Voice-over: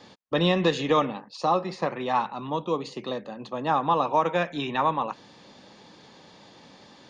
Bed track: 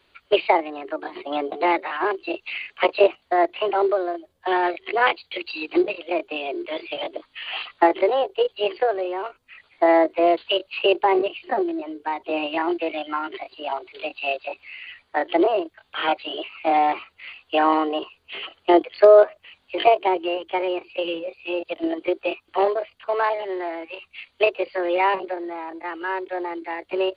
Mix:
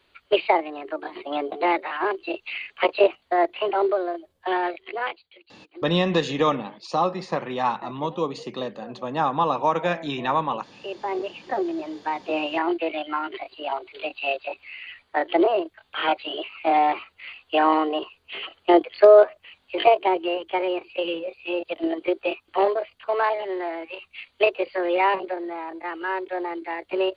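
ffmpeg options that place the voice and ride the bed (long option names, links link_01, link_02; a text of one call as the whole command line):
ffmpeg -i stem1.wav -i stem2.wav -filter_complex "[0:a]adelay=5500,volume=1dB[link_01];[1:a]volume=21dB,afade=type=out:start_time=4.39:duration=0.99:silence=0.0841395,afade=type=in:start_time=10.77:duration=1.08:silence=0.0749894[link_02];[link_01][link_02]amix=inputs=2:normalize=0" out.wav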